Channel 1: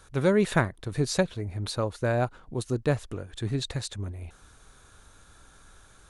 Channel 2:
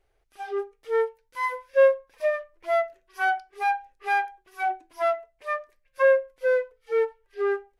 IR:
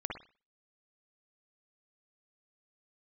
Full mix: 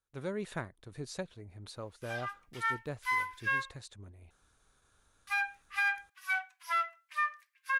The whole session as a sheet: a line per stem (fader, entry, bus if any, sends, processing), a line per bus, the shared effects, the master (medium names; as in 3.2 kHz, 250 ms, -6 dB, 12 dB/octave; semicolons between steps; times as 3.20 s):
-14.0 dB, 0.00 s, no send, gate with hold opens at -44 dBFS; bass shelf 220 Hz -3 dB
+3.0 dB, 1.70 s, muted 3.78–5.27 s, send -23.5 dB, steep high-pass 1.1 kHz 36 dB/octave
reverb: on, pre-delay 50 ms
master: peak limiter -22.5 dBFS, peak gain reduction 7.5 dB